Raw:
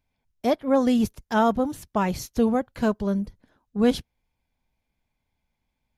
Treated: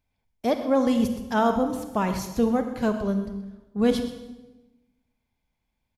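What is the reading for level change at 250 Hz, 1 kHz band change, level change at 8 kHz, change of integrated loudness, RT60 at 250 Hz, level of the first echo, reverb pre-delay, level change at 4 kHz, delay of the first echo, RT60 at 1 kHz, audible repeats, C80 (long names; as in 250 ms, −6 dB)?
−0.5 dB, −0.5 dB, −0.5 dB, −1.0 dB, 1.3 s, −15.5 dB, 32 ms, −0.5 dB, 128 ms, 1.0 s, 1, 9.5 dB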